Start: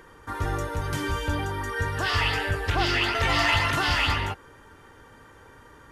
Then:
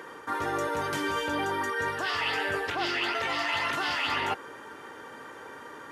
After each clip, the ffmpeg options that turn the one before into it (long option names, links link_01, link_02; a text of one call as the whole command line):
ffmpeg -i in.wav -af "highpass=270,highshelf=frequency=5200:gain=-5,areverse,acompressor=threshold=-34dB:ratio=12,areverse,volume=8dB" out.wav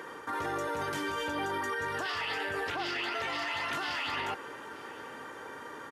ffmpeg -i in.wav -af "alimiter=level_in=2dB:limit=-24dB:level=0:latency=1:release=15,volume=-2dB,aecho=1:1:905:0.0794" out.wav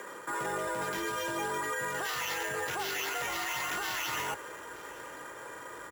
ffmpeg -i in.wav -af "acrusher=samples=5:mix=1:aa=0.000001,asubboost=boost=6:cutoff=53,afreqshift=42" out.wav